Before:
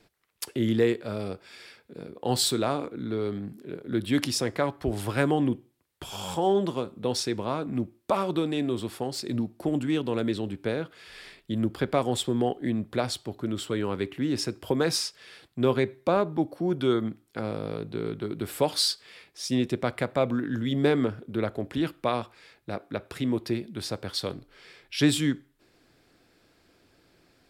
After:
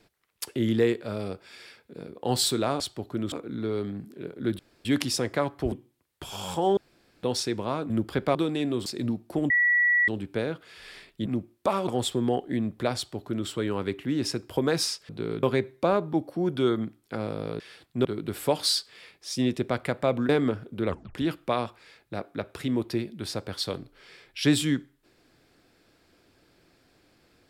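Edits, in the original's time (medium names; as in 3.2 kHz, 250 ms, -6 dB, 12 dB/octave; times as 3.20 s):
4.07 s: insert room tone 0.26 s
4.94–5.52 s: delete
6.57–7.03 s: room tone
7.70–8.32 s: swap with 11.56–12.01 s
8.83–9.16 s: delete
9.80–10.38 s: bleep 1.94 kHz -18.5 dBFS
13.09–13.61 s: copy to 2.80 s
15.22–15.67 s: swap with 17.84–18.18 s
20.42–20.85 s: delete
21.43 s: tape stop 0.28 s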